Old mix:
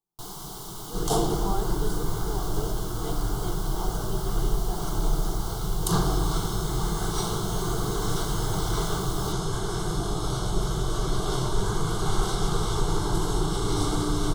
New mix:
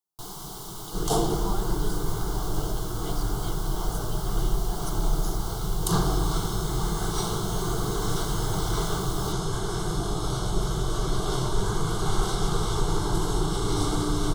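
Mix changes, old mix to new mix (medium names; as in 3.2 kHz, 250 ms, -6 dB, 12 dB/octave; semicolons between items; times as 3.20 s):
speech: add tilt EQ +3.5 dB/octave; reverb: off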